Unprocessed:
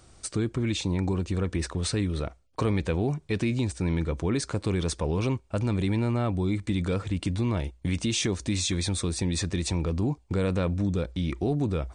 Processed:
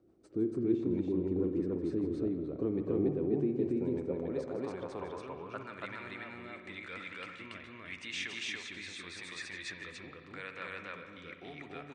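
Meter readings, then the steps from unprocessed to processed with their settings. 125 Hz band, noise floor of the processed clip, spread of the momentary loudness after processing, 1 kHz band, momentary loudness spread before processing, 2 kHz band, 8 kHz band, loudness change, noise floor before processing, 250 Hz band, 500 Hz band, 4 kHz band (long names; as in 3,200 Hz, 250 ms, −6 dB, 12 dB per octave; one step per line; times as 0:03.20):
−17.0 dB, −52 dBFS, 14 LU, −9.5 dB, 3 LU, −3.5 dB, −19.0 dB, −8.0 dB, −58 dBFS, −7.0 dB, −4.5 dB, −11.0 dB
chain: rotating-speaker cabinet horn 6.7 Hz, later 0.85 Hz, at 0:03.92
band-pass filter sweep 330 Hz → 1,900 Hz, 0:03.26–0:06.07
on a send: loudspeakers that aren't time-aligned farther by 54 metres −11 dB, 97 metres 0 dB
on the sum: spring reverb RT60 2.1 s, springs 55 ms, chirp 35 ms, DRR 8 dB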